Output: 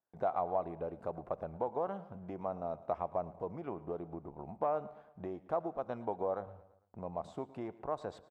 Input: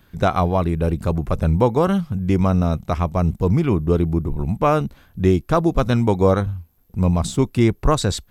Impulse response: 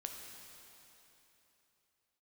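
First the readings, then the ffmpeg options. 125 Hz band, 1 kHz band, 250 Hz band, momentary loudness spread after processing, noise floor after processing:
-31.0 dB, -14.0 dB, -25.5 dB, 11 LU, -66 dBFS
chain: -filter_complex "[0:a]aeval=exprs='if(lt(val(0),0),0.708*val(0),val(0))':c=same,agate=range=0.0631:threshold=0.00355:ratio=16:detection=peak,acompressor=threshold=0.0631:ratio=6,aeval=exprs='(tanh(5.01*val(0)+0.6)-tanh(0.6))/5.01':c=same,bandpass=f=710:t=q:w=2.4:csg=0,aecho=1:1:112|224|336|448:0.112|0.0561|0.0281|0.014,asplit=2[s0][s1];[1:a]atrim=start_sample=2205,afade=t=out:st=0.25:d=0.01,atrim=end_sample=11466,lowpass=3100[s2];[s1][s2]afir=irnorm=-1:irlink=0,volume=0.316[s3];[s0][s3]amix=inputs=2:normalize=0,volume=1.12"

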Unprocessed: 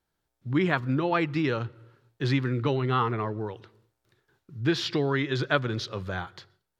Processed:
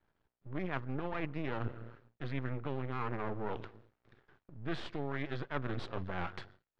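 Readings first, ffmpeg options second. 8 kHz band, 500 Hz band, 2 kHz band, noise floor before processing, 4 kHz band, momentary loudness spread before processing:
no reading, -11.5 dB, -12.0 dB, -81 dBFS, -16.5 dB, 12 LU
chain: -af "aeval=exprs='max(val(0),0)':c=same,areverse,acompressor=threshold=0.00891:ratio=8,areverse,lowpass=2400,volume=2.66"

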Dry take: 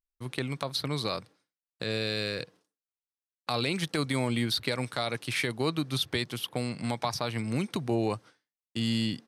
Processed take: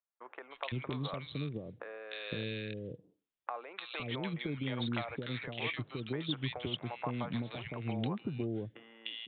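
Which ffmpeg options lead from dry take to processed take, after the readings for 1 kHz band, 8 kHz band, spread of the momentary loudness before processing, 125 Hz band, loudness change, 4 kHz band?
-7.0 dB, under -40 dB, 8 LU, -5.5 dB, -8.0 dB, -9.5 dB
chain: -filter_complex "[0:a]acompressor=threshold=0.0112:ratio=4,acrossover=split=510|1700[s0][s1][s2];[s2]adelay=300[s3];[s0]adelay=510[s4];[s4][s1][s3]amix=inputs=3:normalize=0,aresample=8000,aresample=44100,volume=1.88"

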